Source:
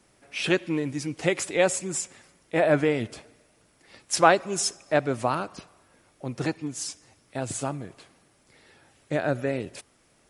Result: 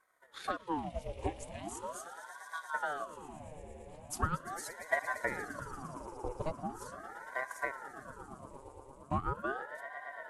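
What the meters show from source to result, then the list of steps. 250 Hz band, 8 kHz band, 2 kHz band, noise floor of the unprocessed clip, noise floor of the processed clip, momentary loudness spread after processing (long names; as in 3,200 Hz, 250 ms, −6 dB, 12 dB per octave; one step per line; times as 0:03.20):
−15.0 dB, −17.0 dB, −8.0 dB, −63 dBFS, −56 dBFS, 14 LU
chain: brickwall limiter −14.5 dBFS, peak gain reduction 11.5 dB
parametric band 4,800 Hz −15 dB 2.2 octaves
phaser with its sweep stopped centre 400 Hz, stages 6
time-frequency box erased 0:01.39–0:02.75, 320–1,900 Hz
tape wow and flutter 42 cents
transient designer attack +6 dB, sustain −6 dB
echo that builds up and dies away 115 ms, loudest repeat 5, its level −16 dB
ring modulator whose carrier an LFO sweeps 770 Hz, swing 70%, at 0.4 Hz
level −4 dB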